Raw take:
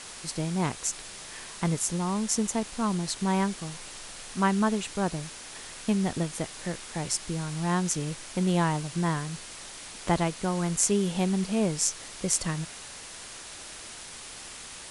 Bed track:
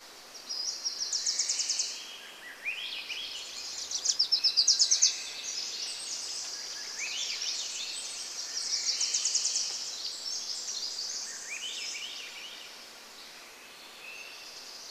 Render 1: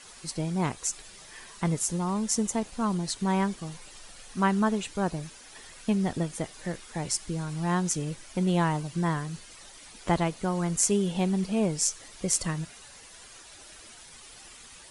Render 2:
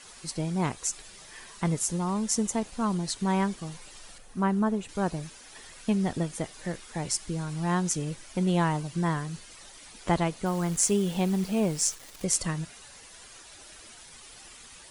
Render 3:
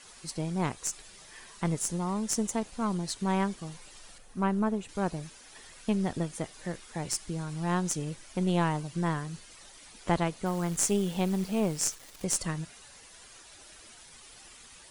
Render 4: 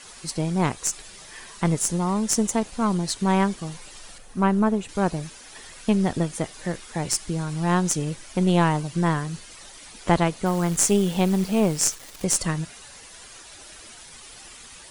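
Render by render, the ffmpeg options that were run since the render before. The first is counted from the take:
-af "afftdn=nr=10:nf=-43"
-filter_complex "[0:a]asettb=1/sr,asplit=3[a][b][c];[a]atrim=end=4.184[d];[b]atrim=start=4.18:end=4.89,asetpts=PTS-STARTPTS,afade=t=in:d=0.004:c=qsin,afade=t=out:st=0.706:d=0.004:c=qsin,equalizer=f=4.6k:w=0.32:g=-10[e];[c]atrim=start=4.886[f];[d][e]acrossfade=d=0.004:c1=hsin:c2=qsin[g];[g][f]acrossfade=d=0.004:c1=qsin:c2=hsin,asettb=1/sr,asplit=3[h][i][j];[h]atrim=end=10.464[k];[i]atrim=start=10.46:end=12.24,asetpts=PTS-STARTPTS,afade=t=in:d=0.004:c=qsin,afade=t=out:st=1.776:d=0.004:c=qsin,acrusher=bits=8:dc=4:mix=0:aa=0.000001[l];[j]atrim=start=12.236[m];[k][l]acrossfade=d=0.004:c1=hsin:c2=qsin[n];[n][m]acrossfade=d=0.004:c1=qsin:c2=hsin"
-af "aeval=exprs='(tanh(3.55*val(0)+0.6)-tanh(0.6))/3.55':c=same"
-af "volume=7.5dB,alimiter=limit=-2dB:level=0:latency=1"

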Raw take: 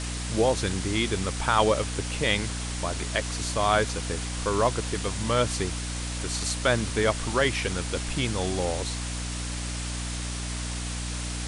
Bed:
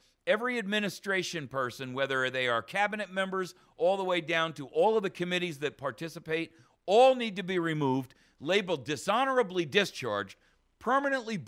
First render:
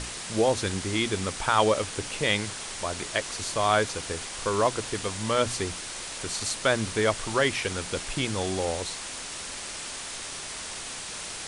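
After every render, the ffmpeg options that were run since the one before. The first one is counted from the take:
-af "bandreject=f=60:t=h:w=6,bandreject=f=120:t=h:w=6,bandreject=f=180:t=h:w=6,bandreject=f=240:t=h:w=6,bandreject=f=300:t=h:w=6"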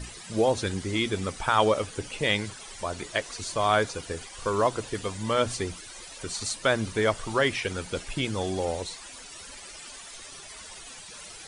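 -af "afftdn=nr=13:nf=-37"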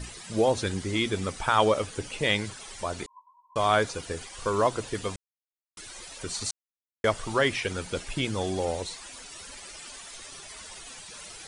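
-filter_complex "[0:a]asettb=1/sr,asplit=3[a][b][c];[a]atrim=end=3.064[d];[b]atrim=start=3.06:end=3.56,asetpts=PTS-STARTPTS,afade=t=in:d=0.004:c=qsin,afade=t=out:st=0.496:d=0.004:c=qsin,asuperpass=centerf=1000:order=12:qfactor=7.2[e];[c]atrim=start=3.556[f];[d][e]acrossfade=d=0.004:c1=hsin:c2=qsin[g];[g][f]acrossfade=d=0.004:c1=qsin:c2=hsin,asplit=5[h][i][j][k][l];[h]atrim=end=5.16,asetpts=PTS-STARTPTS,afade=t=out:st=5.156:d=0.004:c=hsin[m];[i]atrim=start=5.16:end=5.77,asetpts=PTS-STARTPTS,volume=0[n];[j]atrim=start=5.77:end=6.51,asetpts=PTS-STARTPTS,afade=t=in:d=0.004:c=hsin,afade=t=out:st=0.736:d=0.004:c=hsin[o];[k]atrim=start=6.51:end=7.04,asetpts=PTS-STARTPTS,volume=0[p];[l]atrim=start=7.04,asetpts=PTS-STARTPTS,afade=t=in:d=0.004:c=hsin[q];[m][n][o][p][q]concat=n=5:v=0:a=1"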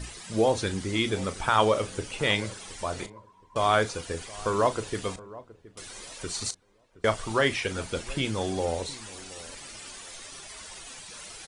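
-filter_complex "[0:a]asplit=2[a][b];[b]adelay=36,volume=-13dB[c];[a][c]amix=inputs=2:normalize=0,asplit=2[d][e];[e]adelay=720,lowpass=f=910:p=1,volume=-17.5dB,asplit=2[f][g];[g]adelay=720,lowpass=f=910:p=1,volume=0.3,asplit=2[h][i];[i]adelay=720,lowpass=f=910:p=1,volume=0.3[j];[d][f][h][j]amix=inputs=4:normalize=0"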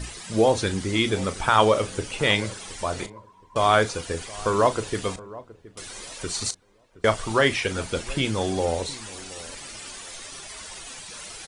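-af "volume=4dB"

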